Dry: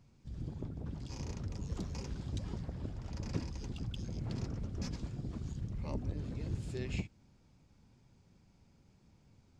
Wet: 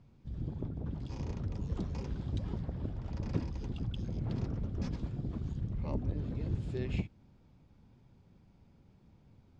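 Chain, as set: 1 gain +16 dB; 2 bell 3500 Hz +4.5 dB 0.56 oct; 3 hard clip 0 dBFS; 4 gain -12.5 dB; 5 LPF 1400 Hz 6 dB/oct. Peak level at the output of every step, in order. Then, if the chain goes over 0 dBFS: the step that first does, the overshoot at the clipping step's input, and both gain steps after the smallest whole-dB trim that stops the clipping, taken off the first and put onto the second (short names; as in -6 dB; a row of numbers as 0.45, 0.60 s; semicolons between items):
-5.0, -5.0, -5.0, -17.5, -18.0 dBFS; no overload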